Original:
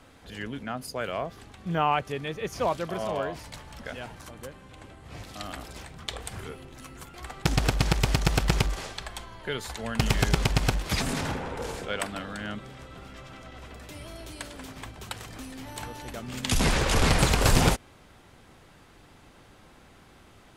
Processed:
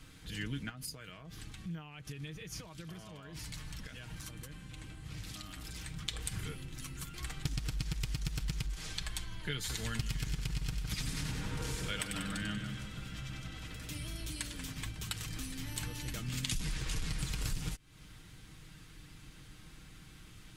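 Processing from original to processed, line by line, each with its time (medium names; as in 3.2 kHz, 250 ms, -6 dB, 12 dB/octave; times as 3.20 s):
0.69–5.85 s: compression 8:1, threshold -40 dBFS
9.54–13.97 s: two-band feedback delay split 1.8 kHz, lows 159 ms, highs 95 ms, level -7 dB
whole clip: amplifier tone stack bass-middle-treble 6-0-2; comb 6.4 ms, depth 49%; compression 12:1, threshold -49 dBFS; trim +16.5 dB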